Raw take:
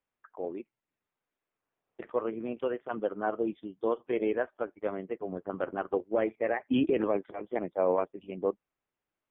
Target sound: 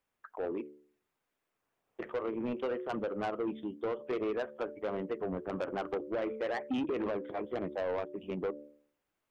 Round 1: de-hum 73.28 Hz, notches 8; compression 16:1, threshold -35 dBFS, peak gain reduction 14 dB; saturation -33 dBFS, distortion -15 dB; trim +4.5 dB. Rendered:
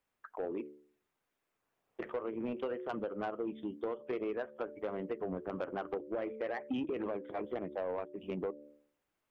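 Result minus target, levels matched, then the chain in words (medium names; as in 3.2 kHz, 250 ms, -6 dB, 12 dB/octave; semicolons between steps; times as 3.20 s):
compression: peak gain reduction +5.5 dB
de-hum 73.28 Hz, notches 8; compression 16:1, threshold -29 dBFS, peak gain reduction 8.5 dB; saturation -33 dBFS, distortion -10 dB; trim +4.5 dB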